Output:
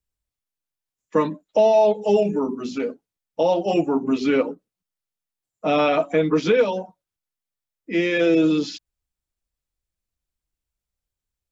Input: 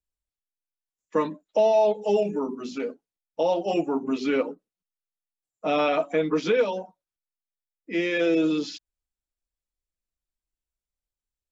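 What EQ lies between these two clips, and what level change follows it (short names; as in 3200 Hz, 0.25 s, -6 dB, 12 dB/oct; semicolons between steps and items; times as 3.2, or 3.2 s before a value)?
bell 100 Hz +7.5 dB 1.8 oct; +3.5 dB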